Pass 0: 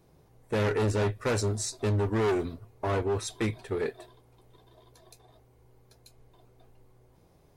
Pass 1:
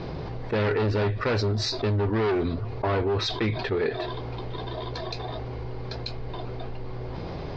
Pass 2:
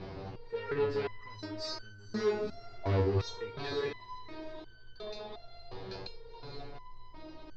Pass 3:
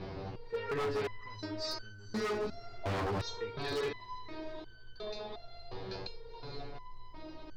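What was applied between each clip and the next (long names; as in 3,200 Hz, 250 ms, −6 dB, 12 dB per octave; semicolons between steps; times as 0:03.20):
elliptic low-pass filter 4,800 Hz, stop band 60 dB; envelope flattener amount 70%; level +2 dB
feedback delay with all-pass diffusion 482 ms, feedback 42%, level −6.5 dB; step-sequenced resonator 2.8 Hz 96–1,500 Hz; level +2 dB
wave folding −29.5 dBFS; level +1 dB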